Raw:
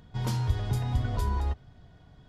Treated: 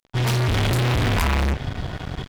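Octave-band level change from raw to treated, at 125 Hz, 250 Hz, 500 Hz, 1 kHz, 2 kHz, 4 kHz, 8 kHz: +7.5, +11.5, +14.0, +10.5, +19.0, +16.5, +13.0 decibels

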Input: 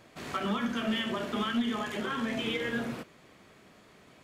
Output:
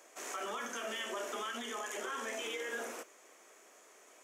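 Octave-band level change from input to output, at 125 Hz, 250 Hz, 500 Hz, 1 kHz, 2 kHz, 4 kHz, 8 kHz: below −25 dB, −19.0 dB, −5.0 dB, −5.0 dB, −5.0 dB, −7.0 dB, +7.0 dB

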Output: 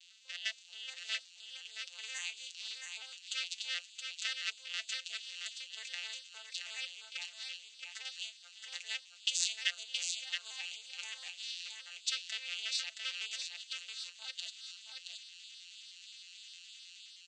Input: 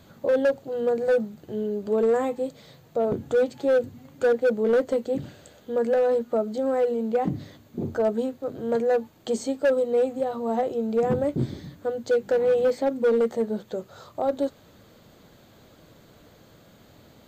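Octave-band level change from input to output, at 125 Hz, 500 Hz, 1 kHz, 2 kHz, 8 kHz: below −40 dB, below −40 dB, −27.0 dB, −4.0 dB, can't be measured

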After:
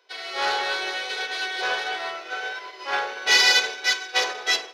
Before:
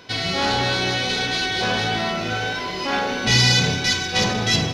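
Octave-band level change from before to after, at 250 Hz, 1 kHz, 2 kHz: −20.0, −3.5, −0.5 decibels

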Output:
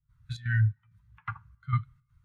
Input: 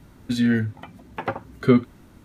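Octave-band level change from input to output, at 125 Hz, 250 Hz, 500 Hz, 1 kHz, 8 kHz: +1.0 dB, −25.5 dB, below −40 dB, −7.5 dB, can't be measured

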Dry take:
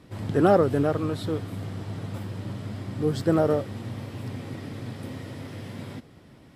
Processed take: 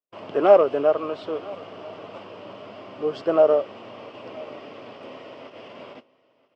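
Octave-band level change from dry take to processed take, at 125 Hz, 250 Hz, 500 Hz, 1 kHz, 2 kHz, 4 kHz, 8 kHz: −19.0 dB, −6.0 dB, +5.5 dB, +3.0 dB, −0.5 dB, 0.0 dB, below −10 dB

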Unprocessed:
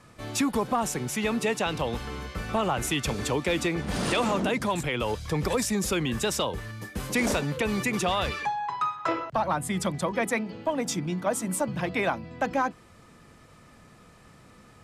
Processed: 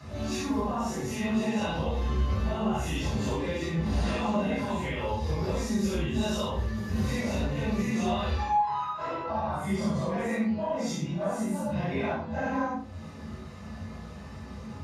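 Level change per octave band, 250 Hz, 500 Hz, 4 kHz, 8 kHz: +0.5, −3.0, −6.0, −9.5 decibels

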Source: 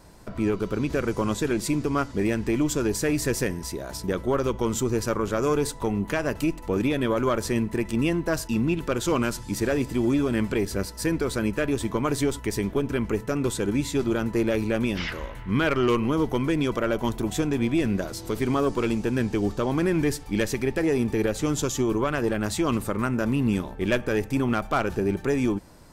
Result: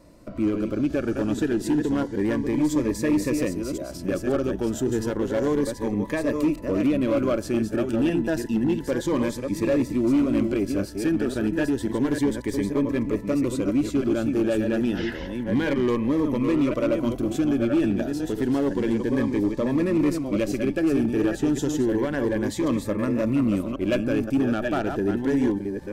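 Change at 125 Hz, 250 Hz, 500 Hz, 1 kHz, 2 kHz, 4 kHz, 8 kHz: −2.0, +3.0, +0.5, −4.0, −3.0, −4.0, −6.0 decibels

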